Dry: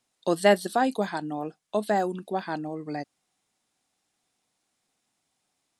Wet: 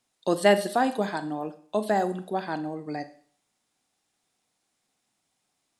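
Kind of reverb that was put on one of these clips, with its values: Schroeder reverb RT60 0.5 s, combs from 29 ms, DRR 11 dB

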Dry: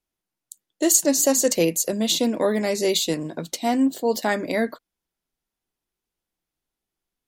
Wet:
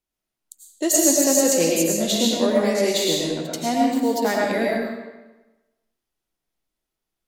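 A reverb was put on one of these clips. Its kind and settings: algorithmic reverb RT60 1.1 s, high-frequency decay 0.85×, pre-delay 65 ms, DRR -3 dB; trim -2.5 dB

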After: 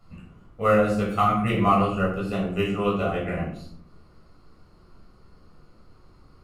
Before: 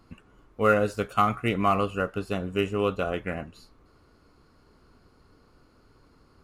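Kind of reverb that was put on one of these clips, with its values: simulated room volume 860 m³, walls furnished, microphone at 6.6 m; trim -6.5 dB

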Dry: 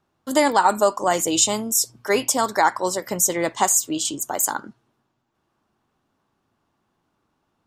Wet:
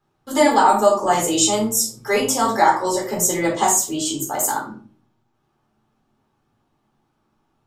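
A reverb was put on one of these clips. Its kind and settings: simulated room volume 300 m³, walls furnished, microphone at 4 m; trim -5 dB

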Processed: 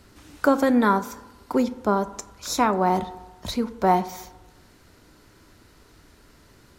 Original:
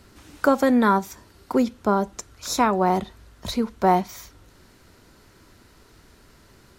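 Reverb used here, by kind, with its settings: FDN reverb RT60 1.1 s, low-frequency decay 1×, high-frequency decay 0.3×, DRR 13 dB; trim -1 dB

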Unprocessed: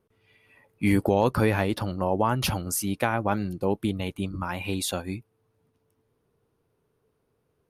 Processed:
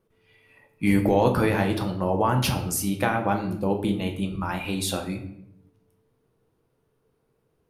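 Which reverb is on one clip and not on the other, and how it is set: simulated room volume 150 m³, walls mixed, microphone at 0.62 m

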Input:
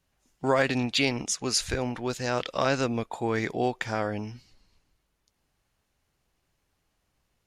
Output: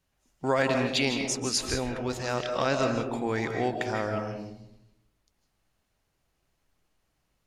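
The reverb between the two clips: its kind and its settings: algorithmic reverb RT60 0.82 s, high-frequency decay 0.3×, pre-delay 115 ms, DRR 4 dB; trim -2 dB

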